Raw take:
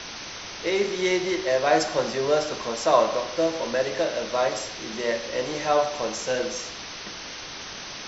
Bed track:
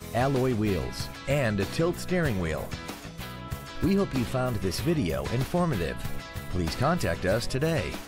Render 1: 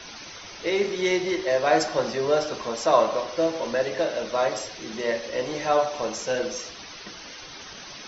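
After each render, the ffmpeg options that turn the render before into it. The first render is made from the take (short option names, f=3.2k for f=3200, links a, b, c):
-af "afftdn=nr=10:nf=-38"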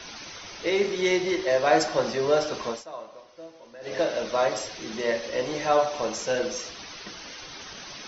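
-filter_complex "[0:a]asplit=3[a][b][c];[a]atrim=end=2.84,asetpts=PTS-STARTPTS,afade=t=out:st=2.69:d=0.15:silence=0.1[d];[b]atrim=start=2.84:end=3.81,asetpts=PTS-STARTPTS,volume=-20dB[e];[c]atrim=start=3.81,asetpts=PTS-STARTPTS,afade=t=in:d=0.15:silence=0.1[f];[d][e][f]concat=n=3:v=0:a=1"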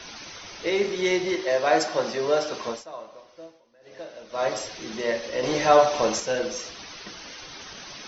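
-filter_complex "[0:a]asettb=1/sr,asplit=3[a][b][c];[a]atrim=end=1.354[d];[b]atrim=start=1.35:end=2.67,asetpts=PTS-STARTPTS,afade=t=in:d=0.004:c=qsin,afade=t=out:st=1.316:d=0.004:c=qsin,highpass=f=190:p=1[e];[c]atrim=start=2.666[f];[d][e]acrossfade=d=0.004:c1=hsin:c2=qsin[g];[g][f]acrossfade=d=0.004:c1=qsin:c2=hsin,asettb=1/sr,asplit=3[h][i][j];[h]atrim=end=5.434[k];[i]atrim=start=5.43:end=6.2,asetpts=PTS-STARTPTS,afade=t=in:d=0.004:c=qsin,afade=t=out:st=0.766:d=0.004:c=qsin,acontrast=41[l];[j]atrim=start=6.196[m];[k][l]acrossfade=d=0.004:c1=hsin:c2=qsin[n];[n][m]acrossfade=d=0.004:c1=qsin:c2=hsin,asplit=3[o][p][q];[o]atrim=end=3.63,asetpts=PTS-STARTPTS,afade=t=out:st=3.44:d=0.19:silence=0.199526[r];[p]atrim=start=3.63:end=4.29,asetpts=PTS-STARTPTS,volume=-14dB[s];[q]atrim=start=4.29,asetpts=PTS-STARTPTS,afade=t=in:d=0.19:silence=0.199526[t];[r][s][t]concat=n=3:v=0:a=1"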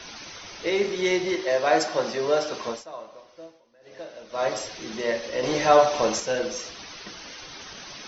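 -af anull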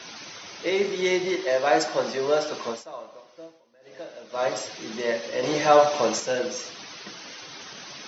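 -af "highpass=f=110:w=0.5412,highpass=f=110:w=1.3066"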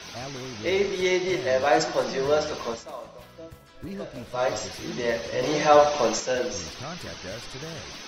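-filter_complex "[1:a]volume=-12.5dB[a];[0:a][a]amix=inputs=2:normalize=0"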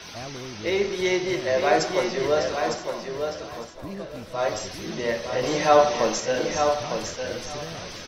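-af "aecho=1:1:906|1812|2718:0.501|0.0902|0.0162"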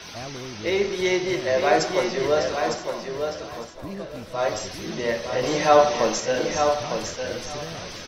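-af "volume=1dB"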